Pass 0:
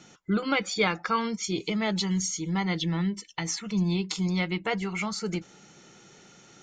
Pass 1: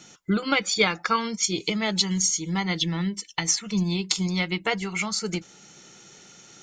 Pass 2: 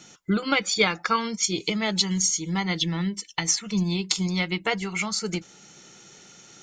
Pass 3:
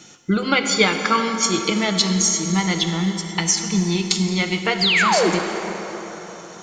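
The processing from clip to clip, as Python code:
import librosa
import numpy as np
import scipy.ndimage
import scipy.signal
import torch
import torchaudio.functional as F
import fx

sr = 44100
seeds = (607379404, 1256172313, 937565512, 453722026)

y1 = fx.high_shelf(x, sr, hz=3200.0, db=9.0)
y1 = fx.transient(y1, sr, attack_db=4, sustain_db=-1)
y2 = y1
y3 = fx.peak_eq(y2, sr, hz=350.0, db=3.5, octaves=0.2)
y3 = fx.spec_paint(y3, sr, seeds[0], shape='fall', start_s=4.81, length_s=0.49, low_hz=300.0, high_hz=5100.0, level_db=-22.0)
y3 = fx.rev_plate(y3, sr, seeds[1], rt60_s=4.4, hf_ratio=0.55, predelay_ms=0, drr_db=4.5)
y3 = F.gain(torch.from_numpy(y3), 4.0).numpy()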